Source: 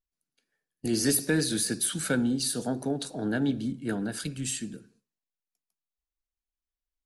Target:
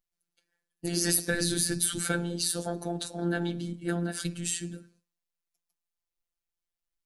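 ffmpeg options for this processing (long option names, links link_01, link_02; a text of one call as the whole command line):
ffmpeg -i in.wav -filter_complex "[0:a]asplit=3[link_01][link_02][link_03];[link_01]afade=type=out:start_time=1.33:duration=0.02[link_04];[link_02]asubboost=boost=10.5:cutoff=180,afade=type=in:start_time=1.33:duration=0.02,afade=type=out:start_time=1.99:duration=0.02[link_05];[link_03]afade=type=in:start_time=1.99:duration=0.02[link_06];[link_04][link_05][link_06]amix=inputs=3:normalize=0,afftfilt=real='hypot(re,im)*cos(PI*b)':imag='0':win_size=1024:overlap=0.75,afftfilt=real='re*lt(hypot(re,im),0.355)':imag='im*lt(hypot(re,im),0.355)':win_size=1024:overlap=0.75,volume=4dB" out.wav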